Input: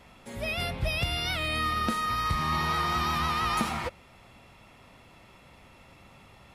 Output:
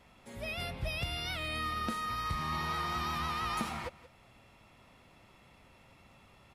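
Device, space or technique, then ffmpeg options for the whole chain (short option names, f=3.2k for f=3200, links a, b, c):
ducked delay: -filter_complex "[0:a]asplit=3[a][b][c];[b]adelay=177,volume=-4.5dB[d];[c]apad=whole_len=296582[e];[d][e]sidechaincompress=threshold=-51dB:ratio=4:attack=8:release=306[f];[a][f]amix=inputs=2:normalize=0,volume=-7dB"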